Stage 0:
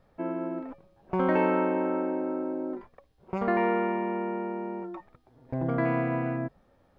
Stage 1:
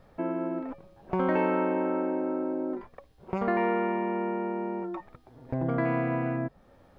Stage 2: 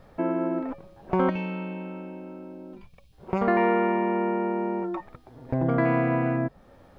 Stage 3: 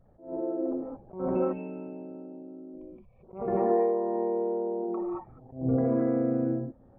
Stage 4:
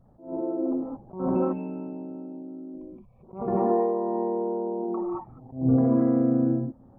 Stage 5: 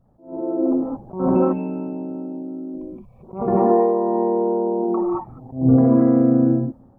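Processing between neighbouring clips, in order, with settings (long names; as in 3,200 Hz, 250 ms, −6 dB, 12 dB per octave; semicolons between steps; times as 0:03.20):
downward compressor 1.5 to 1, threshold −43 dBFS, peak gain reduction 8.5 dB; level +6.5 dB
gain on a spectral selection 0:01.30–0:03.13, 220–2,200 Hz −16 dB; level +4.5 dB
spectral envelope exaggerated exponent 2; reverb whose tail is shaped and stops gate 250 ms rising, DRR −4.5 dB; level that may rise only so fast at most 150 dB per second; level −8.5 dB
octave-band graphic EQ 125/250/500/1,000/2,000 Hz +4/+6/−3/+7/−6 dB
automatic gain control gain up to 10.5 dB; level −2 dB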